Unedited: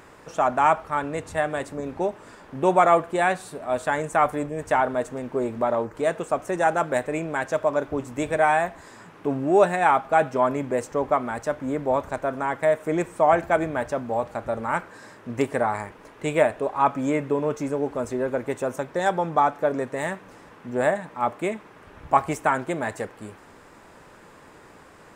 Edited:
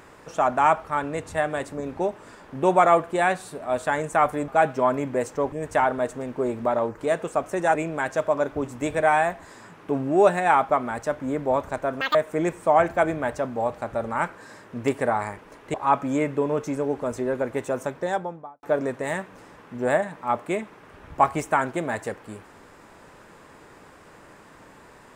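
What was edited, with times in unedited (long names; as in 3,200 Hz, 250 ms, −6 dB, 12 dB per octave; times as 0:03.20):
0:06.71–0:07.11: remove
0:10.05–0:11.09: move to 0:04.48
0:12.41–0:12.68: play speed 194%
0:16.27–0:16.67: remove
0:18.80–0:19.56: fade out and dull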